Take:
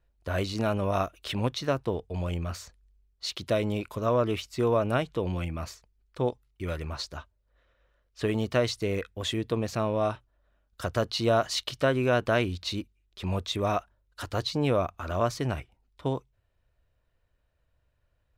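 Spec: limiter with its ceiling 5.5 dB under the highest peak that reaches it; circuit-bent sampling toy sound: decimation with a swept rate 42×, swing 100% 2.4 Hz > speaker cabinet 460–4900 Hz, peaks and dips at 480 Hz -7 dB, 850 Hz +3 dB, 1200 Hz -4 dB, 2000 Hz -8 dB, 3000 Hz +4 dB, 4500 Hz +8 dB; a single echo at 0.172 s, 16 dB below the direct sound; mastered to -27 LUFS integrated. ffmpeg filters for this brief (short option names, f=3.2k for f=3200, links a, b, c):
-af "alimiter=limit=-17dB:level=0:latency=1,aecho=1:1:172:0.158,acrusher=samples=42:mix=1:aa=0.000001:lfo=1:lforange=42:lforate=2.4,highpass=460,equalizer=f=480:t=q:w=4:g=-7,equalizer=f=850:t=q:w=4:g=3,equalizer=f=1.2k:t=q:w=4:g=-4,equalizer=f=2k:t=q:w=4:g=-8,equalizer=f=3k:t=q:w=4:g=4,equalizer=f=4.5k:t=q:w=4:g=8,lowpass=f=4.9k:w=0.5412,lowpass=f=4.9k:w=1.3066,volume=8.5dB"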